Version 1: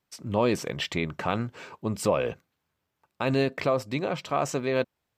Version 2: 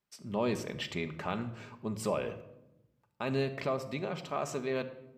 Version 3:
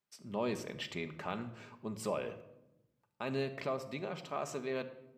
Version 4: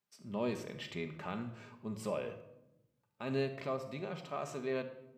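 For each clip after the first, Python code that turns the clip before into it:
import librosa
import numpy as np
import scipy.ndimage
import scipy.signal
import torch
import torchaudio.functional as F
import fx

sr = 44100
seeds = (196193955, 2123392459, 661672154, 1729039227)

y1 = fx.room_shoebox(x, sr, seeds[0], volume_m3=3300.0, walls='furnished', distance_m=1.3)
y1 = y1 * librosa.db_to_amplitude(-8.0)
y2 = fx.low_shelf(y1, sr, hz=84.0, db=-10.0)
y2 = y2 * librosa.db_to_amplitude(-3.5)
y3 = fx.hpss(y2, sr, part='percussive', gain_db=-8)
y3 = y3 * librosa.db_to_amplitude(2.0)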